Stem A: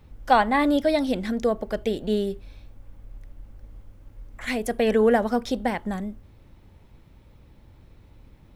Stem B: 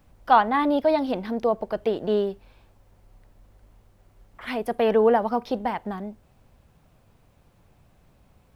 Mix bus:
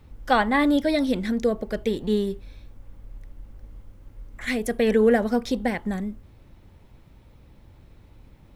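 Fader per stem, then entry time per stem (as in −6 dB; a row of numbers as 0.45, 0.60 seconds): +0.5, −8.0 decibels; 0.00, 0.00 seconds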